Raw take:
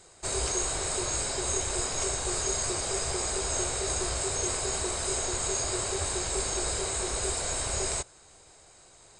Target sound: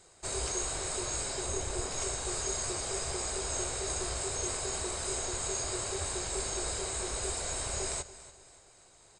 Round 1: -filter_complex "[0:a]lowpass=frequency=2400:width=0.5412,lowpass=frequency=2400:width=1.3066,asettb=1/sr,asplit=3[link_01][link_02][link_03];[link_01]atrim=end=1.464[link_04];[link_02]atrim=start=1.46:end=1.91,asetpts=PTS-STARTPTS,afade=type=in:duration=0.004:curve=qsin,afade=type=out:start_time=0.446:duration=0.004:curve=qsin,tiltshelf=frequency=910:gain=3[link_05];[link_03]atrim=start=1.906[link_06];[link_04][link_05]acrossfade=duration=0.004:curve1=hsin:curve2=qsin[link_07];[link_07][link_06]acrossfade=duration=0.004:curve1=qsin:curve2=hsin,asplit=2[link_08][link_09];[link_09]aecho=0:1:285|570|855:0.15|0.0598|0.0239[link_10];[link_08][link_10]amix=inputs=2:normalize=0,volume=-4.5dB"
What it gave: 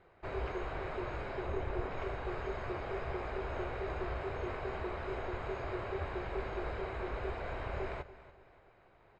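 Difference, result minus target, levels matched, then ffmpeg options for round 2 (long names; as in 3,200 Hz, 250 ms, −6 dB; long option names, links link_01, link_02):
2,000 Hz band +5.5 dB
-filter_complex "[0:a]asettb=1/sr,asplit=3[link_01][link_02][link_03];[link_01]atrim=end=1.464[link_04];[link_02]atrim=start=1.46:end=1.91,asetpts=PTS-STARTPTS,afade=type=in:duration=0.004:curve=qsin,afade=type=out:start_time=0.446:duration=0.004:curve=qsin,tiltshelf=frequency=910:gain=3[link_05];[link_03]atrim=start=1.906[link_06];[link_04][link_05]acrossfade=duration=0.004:curve1=hsin:curve2=qsin[link_07];[link_07][link_06]acrossfade=duration=0.004:curve1=qsin:curve2=hsin,asplit=2[link_08][link_09];[link_09]aecho=0:1:285|570|855:0.15|0.0598|0.0239[link_10];[link_08][link_10]amix=inputs=2:normalize=0,volume=-4.5dB"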